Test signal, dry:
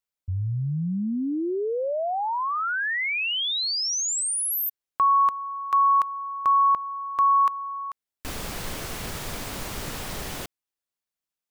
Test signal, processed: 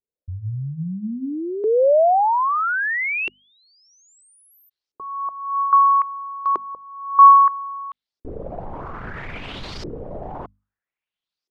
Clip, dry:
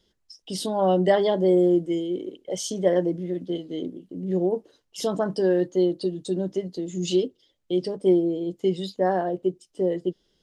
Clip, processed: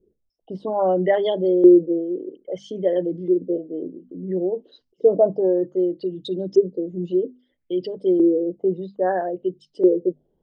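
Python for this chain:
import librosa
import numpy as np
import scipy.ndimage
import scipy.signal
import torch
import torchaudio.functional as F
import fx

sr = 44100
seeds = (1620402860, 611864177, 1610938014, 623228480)

y = fx.envelope_sharpen(x, sr, power=1.5)
y = fx.filter_lfo_lowpass(y, sr, shape='saw_up', hz=0.61, low_hz=370.0, high_hz=5300.0, q=4.2)
y = fx.hum_notches(y, sr, base_hz=50, count=5)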